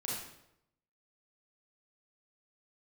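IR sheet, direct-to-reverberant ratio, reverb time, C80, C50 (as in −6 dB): −5.5 dB, 0.80 s, 3.5 dB, −0.5 dB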